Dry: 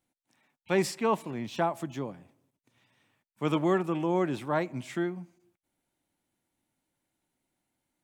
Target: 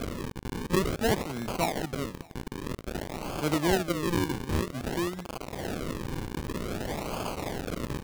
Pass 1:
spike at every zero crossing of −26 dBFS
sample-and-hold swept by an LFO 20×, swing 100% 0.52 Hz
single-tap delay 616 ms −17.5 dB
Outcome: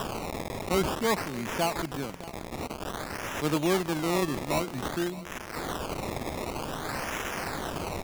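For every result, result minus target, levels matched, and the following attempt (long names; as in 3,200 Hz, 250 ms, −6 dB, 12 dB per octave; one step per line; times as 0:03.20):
echo-to-direct +9.5 dB; sample-and-hold swept by an LFO: distortion −9 dB
spike at every zero crossing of −26 dBFS
sample-and-hold swept by an LFO 20×, swing 100% 0.52 Hz
single-tap delay 616 ms −27 dB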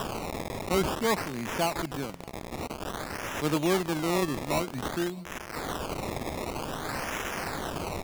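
sample-and-hold swept by an LFO: distortion −9 dB
spike at every zero crossing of −26 dBFS
sample-and-hold swept by an LFO 46×, swing 100% 0.52 Hz
single-tap delay 616 ms −27 dB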